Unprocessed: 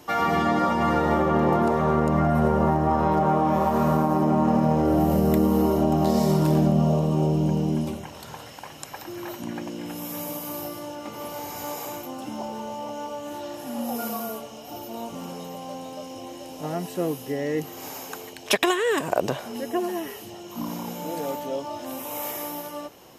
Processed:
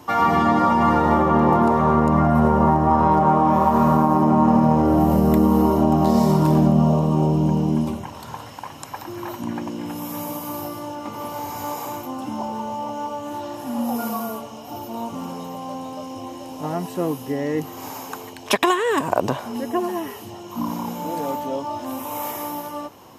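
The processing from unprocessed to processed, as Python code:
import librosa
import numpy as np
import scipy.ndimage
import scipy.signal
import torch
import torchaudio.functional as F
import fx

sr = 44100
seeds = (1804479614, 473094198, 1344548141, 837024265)

y = fx.graphic_eq_15(x, sr, hz=(100, 250, 1000), db=(9, 6, 9))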